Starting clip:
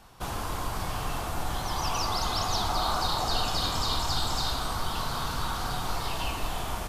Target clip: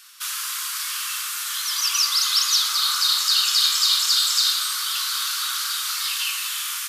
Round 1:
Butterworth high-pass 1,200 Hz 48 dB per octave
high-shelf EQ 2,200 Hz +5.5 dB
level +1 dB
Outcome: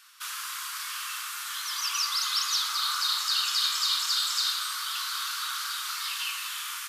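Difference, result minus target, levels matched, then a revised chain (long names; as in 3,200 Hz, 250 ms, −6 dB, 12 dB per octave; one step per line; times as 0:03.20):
2,000 Hz band +3.5 dB
Butterworth high-pass 1,200 Hz 48 dB per octave
high-shelf EQ 2,200 Hz +15.5 dB
level +1 dB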